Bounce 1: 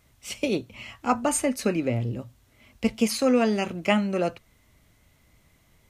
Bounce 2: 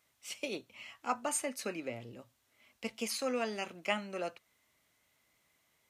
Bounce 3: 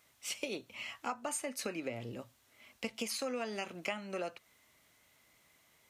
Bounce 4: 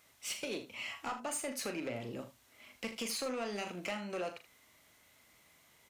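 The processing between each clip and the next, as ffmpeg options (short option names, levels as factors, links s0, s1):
-af "highpass=f=720:p=1,volume=0.422"
-af "acompressor=threshold=0.00891:ratio=6,volume=2"
-af "asoftclip=type=tanh:threshold=0.02,aecho=1:1:39|79:0.355|0.224,volume=1.26"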